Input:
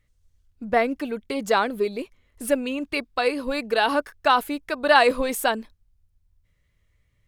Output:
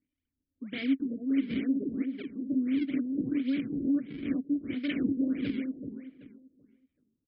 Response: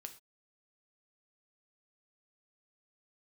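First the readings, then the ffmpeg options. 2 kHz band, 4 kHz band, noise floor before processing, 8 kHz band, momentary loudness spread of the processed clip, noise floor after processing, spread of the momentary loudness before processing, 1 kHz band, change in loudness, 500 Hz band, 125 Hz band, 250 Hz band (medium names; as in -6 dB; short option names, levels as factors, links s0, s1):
-18.5 dB, -16.5 dB, -67 dBFS, under -40 dB, 9 LU, under -85 dBFS, 13 LU, under -35 dB, -8.0 dB, -20.5 dB, no reading, +2.5 dB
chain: -filter_complex "[0:a]highshelf=f=4600:g=-6,aresample=16000,aeval=exprs='0.119*(abs(mod(val(0)/0.119+3,4)-2)-1)':c=same,aresample=44100,acrusher=samples=41:mix=1:aa=0.000001:lfo=1:lforange=65.6:lforate=2.2,asplit=3[s0][s1][s2];[s0]bandpass=f=270:t=q:w=8,volume=1[s3];[s1]bandpass=f=2290:t=q:w=8,volume=0.501[s4];[s2]bandpass=f=3010:t=q:w=8,volume=0.355[s5];[s3][s4][s5]amix=inputs=3:normalize=0,asplit=2[s6][s7];[s7]adelay=382,lowpass=f=2900:p=1,volume=0.562,asplit=2[s8][s9];[s9]adelay=382,lowpass=f=2900:p=1,volume=0.28,asplit=2[s10][s11];[s11]adelay=382,lowpass=f=2900:p=1,volume=0.28,asplit=2[s12][s13];[s13]adelay=382,lowpass=f=2900:p=1,volume=0.28[s14];[s8][s10][s12][s14]amix=inputs=4:normalize=0[s15];[s6][s15]amix=inputs=2:normalize=0,afftfilt=real='re*lt(b*sr/1024,630*pow(5400/630,0.5+0.5*sin(2*PI*1.5*pts/sr)))':imag='im*lt(b*sr/1024,630*pow(5400/630,0.5+0.5*sin(2*PI*1.5*pts/sr)))':win_size=1024:overlap=0.75,volume=1.68"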